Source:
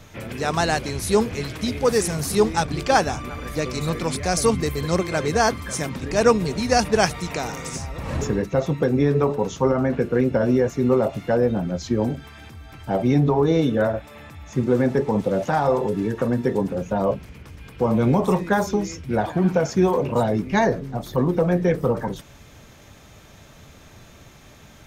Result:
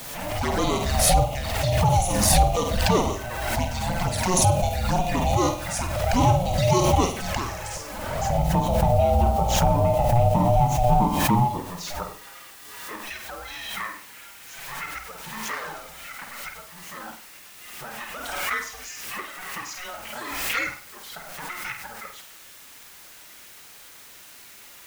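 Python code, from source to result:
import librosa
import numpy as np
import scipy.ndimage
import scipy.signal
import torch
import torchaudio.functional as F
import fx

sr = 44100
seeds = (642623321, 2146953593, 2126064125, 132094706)

p1 = fx.filter_sweep_highpass(x, sr, from_hz=270.0, to_hz=1700.0, start_s=10.3, end_s=13.14, q=1.6)
p2 = 10.0 ** (-15.5 / 20.0) * (np.abs((p1 / 10.0 ** (-15.5 / 20.0) + 3.0) % 4.0 - 2.0) - 1.0)
p3 = p1 + (p2 * 10.0 ** (-11.0 / 20.0))
p4 = p3 * np.sin(2.0 * np.pi * 360.0 * np.arange(len(p3)) / sr)
p5 = fx.env_flanger(p4, sr, rest_ms=8.0, full_db=-19.0)
p6 = fx.quant_dither(p5, sr, seeds[0], bits=8, dither='triangular')
p7 = p6 + fx.room_flutter(p6, sr, wall_m=8.5, rt60_s=0.39, dry=0)
y = fx.pre_swell(p7, sr, db_per_s=33.0)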